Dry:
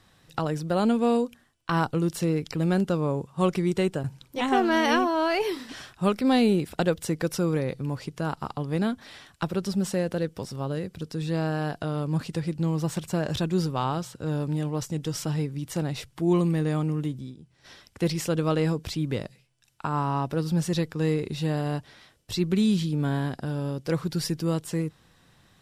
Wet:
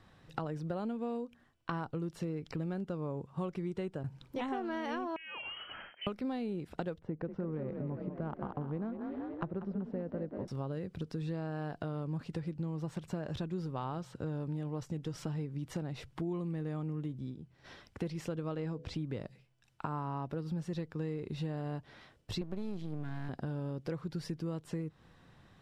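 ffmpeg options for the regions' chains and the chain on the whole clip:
ffmpeg -i in.wav -filter_complex "[0:a]asettb=1/sr,asplit=3[link_01][link_02][link_03];[link_01]atrim=end=5.164[link_04];[link_02]atrim=start=5.16:end=6.07,asetpts=PTS-STARTPTS,afade=type=in:duration=0.004:curve=qsin,afade=type=out:start_time=0.906:duration=0.004:curve=qsin,aeval=exprs='if(lt(val(0),0),0.708*val(0),val(0))':channel_layout=same,lowpass=frequency=2700:width_type=q:width=0.5098,lowpass=frequency=2700:width_type=q:width=0.6013,lowpass=frequency=2700:width_type=q:width=0.9,lowpass=frequency=2700:width_type=q:width=2.563,afreqshift=-3200,acompressor=threshold=-35dB:ratio=6:attack=3.2:release=140:knee=1:detection=peak[link_05];[link_03]atrim=start=6.066[link_06];[link_04][link_05]acrossfade=duration=0.004:curve1=hsin:curve2=qsin[link_07];[link_07][link_06]acrossfade=duration=0.004:curve1=qsin:curve2=hsin,asettb=1/sr,asplit=3[link_08][link_09][link_10];[link_08]atrim=end=6.994[link_11];[link_09]atrim=start=6.99:end=10.48,asetpts=PTS-STARTPTS,afade=type=in:duration=0.004:curve=qsin,afade=type=out:start_time=3.486:duration=0.004:curve=qsin,adynamicsmooth=sensitivity=0.5:basefreq=1100,asplit=8[link_12][link_13][link_14][link_15][link_16][link_17][link_18][link_19];[link_13]adelay=189,afreqshift=39,volume=-9dB[link_20];[link_14]adelay=378,afreqshift=78,volume=-13.9dB[link_21];[link_15]adelay=567,afreqshift=117,volume=-18.8dB[link_22];[link_16]adelay=756,afreqshift=156,volume=-23.6dB[link_23];[link_17]adelay=945,afreqshift=195,volume=-28.5dB[link_24];[link_18]adelay=1134,afreqshift=234,volume=-33.4dB[link_25];[link_19]adelay=1323,afreqshift=273,volume=-38.3dB[link_26];[link_12][link_20][link_21][link_22][link_23][link_24][link_25][link_26]amix=inputs=8:normalize=0,atrim=end_sample=153909[link_27];[link_10]atrim=start=10.476[link_28];[link_11][link_27]acrossfade=duration=0.004:curve1=hsin:curve2=qsin[link_29];[link_29][link_28]acrossfade=duration=0.004:curve1=qsin:curve2=hsin,asettb=1/sr,asplit=3[link_30][link_31][link_32];[link_30]atrim=end=18.544[link_33];[link_31]atrim=start=18.54:end=18.94,asetpts=PTS-STARTPTS,afade=type=in:duration=0.004:curve=qsin,afade=type=out:start_time=0.396:duration=0.004:curve=qsin,lowpass=8300,bandreject=frequency=70.83:width_type=h:width=4,bandreject=frequency=141.66:width_type=h:width=4,bandreject=frequency=212.49:width_type=h:width=4,bandreject=frequency=283.32:width_type=h:width=4,bandreject=frequency=354.15:width_type=h:width=4,bandreject=frequency=424.98:width_type=h:width=4,bandreject=frequency=495.81:width_type=h:width=4,bandreject=frequency=566.64:width_type=h:width=4,bandreject=frequency=637.47:width_type=h:width=4[link_34];[link_32]atrim=start=18.936[link_35];[link_33][link_34]acrossfade=duration=0.004:curve1=hsin:curve2=qsin[link_36];[link_36][link_35]acrossfade=duration=0.004:curve1=qsin:curve2=hsin,asettb=1/sr,asplit=3[link_37][link_38][link_39];[link_37]atrim=end=22.414[link_40];[link_38]atrim=start=22.41:end=23.29,asetpts=PTS-STARTPTS,afade=type=in:duration=0.004:curve=qsin,afade=type=out:start_time=0.876:duration=0.004:curve=qsin,acrusher=bits=9:mode=log:mix=0:aa=0.000001,highpass=43,aeval=exprs='max(val(0),0)':channel_layout=same[link_41];[link_39]atrim=start=23.286[link_42];[link_40][link_41]acrossfade=duration=0.004:curve1=hsin:curve2=qsin[link_43];[link_43][link_42]acrossfade=duration=0.004:curve1=qsin:curve2=hsin,lowpass=frequency=1800:poles=1,acompressor=threshold=-35dB:ratio=6" out.wav

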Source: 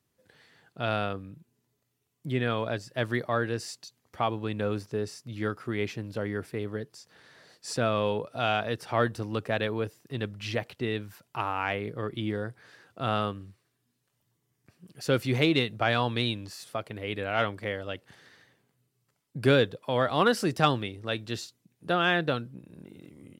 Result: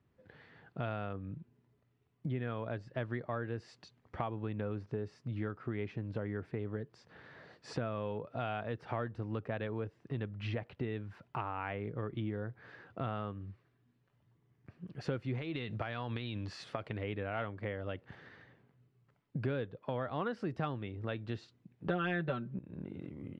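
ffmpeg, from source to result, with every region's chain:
ffmpeg -i in.wav -filter_complex "[0:a]asettb=1/sr,asplit=3[link_01][link_02][link_03];[link_01]atrim=end=15.384[link_04];[link_02]atrim=start=15.38:end=17.04,asetpts=PTS-STARTPTS,afade=type=in:duration=0.004:curve=qsin,afade=type=out:start_time=1.656:duration=0.004:curve=qsin,equalizer=frequency=5300:width=0.37:gain=7.5,acompressor=threshold=-27dB:ratio=6:attack=3.2:release=140:knee=1:detection=peak[link_05];[link_03]atrim=start=17.036[link_06];[link_04][link_05]acrossfade=duration=0.004:curve1=hsin:curve2=qsin[link_07];[link_07][link_06]acrossfade=duration=0.004:curve1=qsin:curve2=hsin,asettb=1/sr,asplit=3[link_08][link_09][link_10];[link_08]atrim=end=21.884[link_11];[link_09]atrim=start=21.88:end=22.59,asetpts=PTS-STARTPTS,afade=type=in:duration=0.004:curve=qsin,afade=type=out:start_time=0.706:duration=0.004:curve=qsin,acontrast=67,aecho=1:1:5.2:0.88,atrim=end_sample=31311[link_12];[link_10]atrim=start=22.586[link_13];[link_11][link_12]acrossfade=duration=0.004:curve1=hsin:curve2=qsin[link_14];[link_14][link_13]acrossfade=duration=0.004:curve1=qsin:curve2=hsin,lowpass=2200,lowshelf=frequency=170:gain=6.5,acompressor=threshold=-38dB:ratio=4,volume=2dB" out.wav

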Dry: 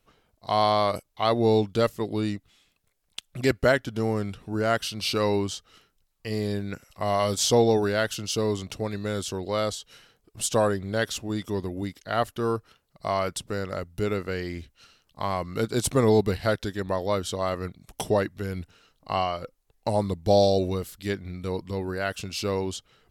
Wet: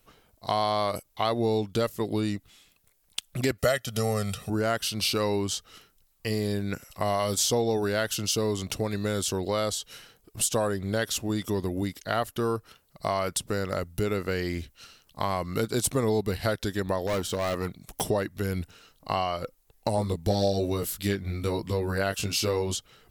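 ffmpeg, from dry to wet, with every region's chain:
ffmpeg -i in.wav -filter_complex "[0:a]asettb=1/sr,asplit=3[link_01][link_02][link_03];[link_01]atrim=end=3.584[link_04];[link_02]atrim=start=3.58:end=4.5,asetpts=PTS-STARTPTS,afade=type=in:duration=0.004:curve=qsin,afade=type=out:start_time=0.916:duration=0.004:curve=qsin,highpass=81,equalizer=frequency=9400:width_type=o:width=3:gain=9,aecho=1:1:1.6:0.8,atrim=end_sample=40572[link_05];[link_03]atrim=start=4.496[link_06];[link_04][link_05]acrossfade=duration=0.004:curve1=hsin:curve2=qsin[link_07];[link_07][link_06]acrossfade=duration=0.004:curve1=qsin:curve2=hsin,asettb=1/sr,asplit=3[link_08][link_09][link_10];[link_08]atrim=end=17.074[link_11];[link_09]atrim=start=17.07:end=18.01,asetpts=PTS-STARTPTS,afade=type=in:duration=0.004:curve=qsin,afade=type=out:start_time=0.936:duration=0.004:curve=qsin,deesser=0.8,equalizer=frequency=70:width=1.5:gain=-5.5,asoftclip=type=hard:threshold=-26.5dB[link_12];[link_10]atrim=start=18.006[link_13];[link_11][link_12]acrossfade=duration=0.004:curve1=hsin:curve2=qsin[link_14];[link_14][link_13]acrossfade=duration=0.004:curve1=qsin:curve2=hsin,asettb=1/sr,asplit=3[link_15][link_16][link_17];[link_15]atrim=end=19.964[link_18];[link_16]atrim=start=19.96:end=22.75,asetpts=PTS-STARTPTS,afade=type=in:duration=0.004:curve=qsin,afade=type=out:start_time=2.786:duration=0.004:curve=qsin,acontrast=31,flanger=delay=18:depth=2.7:speed=1.2[link_19];[link_17]atrim=start=22.746[link_20];[link_18][link_19]acrossfade=duration=0.004:curve1=hsin:curve2=qsin[link_21];[link_21][link_20]acrossfade=duration=0.004:curve1=qsin:curve2=hsin,highshelf=frequency=9400:gain=11,acompressor=threshold=-29dB:ratio=3,volume=4dB" out.wav

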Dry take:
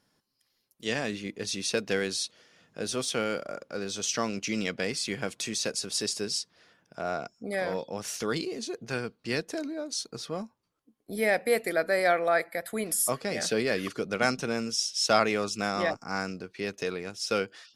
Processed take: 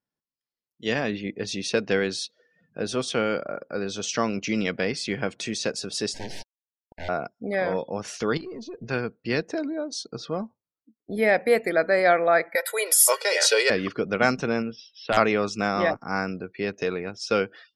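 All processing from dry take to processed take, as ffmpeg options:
ffmpeg -i in.wav -filter_complex "[0:a]asettb=1/sr,asplit=3[link_01][link_02][link_03];[link_01]atrim=end=6.144[link_04];[link_02]atrim=start=6.14:end=7.09,asetpts=PTS-STARTPTS,afade=type=in:duration=0.004:curve=qsin,afade=type=out:start_time=0.946:duration=0.004:curve=qsin,aeval=exprs='(mod(23.7*val(0)+1,2)-1)/23.7':channel_layout=same,acrusher=bits=4:dc=4:mix=0:aa=0.000001,asuperstop=centerf=1200:order=12:qfactor=2.2[link_05];[link_03]atrim=start=7.086[link_06];[link_04][link_05]acrossfade=duration=0.004:curve1=hsin:curve2=qsin[link_07];[link_07][link_06]acrossfade=duration=0.004:curve1=qsin:curve2=hsin,asettb=1/sr,asplit=3[link_08][link_09][link_10];[link_08]atrim=end=8.374[link_11];[link_09]atrim=start=8.37:end=8.89,asetpts=PTS-STARTPTS,afade=type=in:duration=0.004:curve=qsin,afade=type=out:start_time=0.516:duration=0.004:curve=qsin,acompressor=threshold=-37dB:ratio=6:attack=3.2:release=140:knee=1:detection=peak,lowshelf=frequency=110:gain=9.5,aeval=exprs='(tanh(63.1*val(0)+0.15)-tanh(0.15))/63.1':channel_layout=same[link_12];[link_10]atrim=start=8.886[link_13];[link_11][link_12]acrossfade=duration=0.004:curve1=hsin:curve2=qsin[link_14];[link_14][link_13]acrossfade=duration=0.004:curve1=qsin:curve2=hsin,asettb=1/sr,asplit=3[link_15][link_16][link_17];[link_15]atrim=end=12.554[link_18];[link_16]atrim=start=12.55:end=13.7,asetpts=PTS-STARTPTS,afade=type=in:duration=0.004:curve=qsin,afade=type=out:start_time=1.146:duration=0.004:curve=qsin,highpass=frequency=480:width=0.5412,highpass=frequency=480:width=1.3066,highshelf=frequency=2400:gain=11,aecho=1:1:2.1:0.94,atrim=end_sample=50715[link_19];[link_17]atrim=start=13.696[link_20];[link_18][link_19]acrossfade=duration=0.004:curve1=hsin:curve2=qsin[link_21];[link_21][link_20]acrossfade=duration=0.004:curve1=qsin:curve2=hsin,asettb=1/sr,asplit=3[link_22][link_23][link_24];[link_22]atrim=end=14.624[link_25];[link_23]atrim=start=14.62:end=15.17,asetpts=PTS-STARTPTS,afade=type=in:duration=0.004:curve=qsin,afade=type=out:start_time=0.546:duration=0.004:curve=qsin,lowpass=frequency=3400:width=0.5412,lowpass=frequency=3400:width=1.3066,aeval=exprs='(mod(3.76*val(0)+1,2)-1)/3.76':channel_layout=same,acompressor=threshold=-33dB:ratio=1.5:attack=3.2:release=140:knee=1:detection=peak[link_26];[link_24]atrim=start=15.166[link_27];[link_25][link_26]acrossfade=duration=0.004:curve1=hsin:curve2=qsin[link_28];[link_28][link_27]acrossfade=duration=0.004:curve1=qsin:curve2=hsin,aemphasis=mode=reproduction:type=50fm,afftdn=noise_reduction=24:noise_floor=-53,equalizer=frequency=13000:width=2:gain=8,volume=5dB" out.wav

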